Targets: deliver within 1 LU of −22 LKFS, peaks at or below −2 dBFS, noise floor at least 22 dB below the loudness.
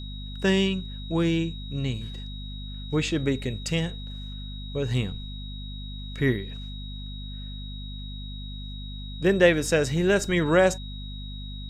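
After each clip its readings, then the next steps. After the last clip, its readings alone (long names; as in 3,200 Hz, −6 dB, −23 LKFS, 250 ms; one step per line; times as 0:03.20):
mains hum 50 Hz; hum harmonics up to 250 Hz; level of the hum −34 dBFS; interfering tone 3,800 Hz; level of the tone −42 dBFS; integrated loudness −25.5 LKFS; sample peak −6.5 dBFS; target loudness −22.0 LKFS
→ hum removal 50 Hz, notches 5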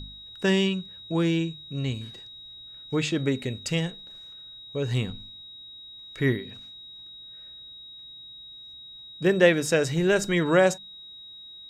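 mains hum none found; interfering tone 3,800 Hz; level of the tone −42 dBFS
→ notch filter 3,800 Hz, Q 30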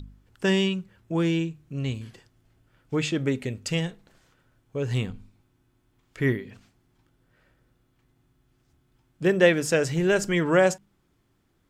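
interfering tone none found; integrated loudness −25.5 LKFS; sample peak −6.5 dBFS; target loudness −22.0 LKFS
→ level +3.5 dB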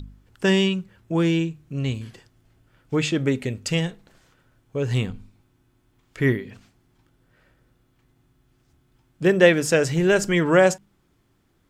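integrated loudness −22.0 LKFS; sample peak −3.0 dBFS; background noise floor −65 dBFS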